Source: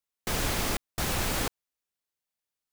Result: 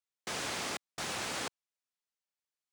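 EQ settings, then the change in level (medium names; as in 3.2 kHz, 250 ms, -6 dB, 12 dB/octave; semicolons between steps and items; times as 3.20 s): Savitzky-Golay filter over 9 samples; high-pass 130 Hz 12 dB/octave; bass shelf 350 Hz -8.5 dB; -4.5 dB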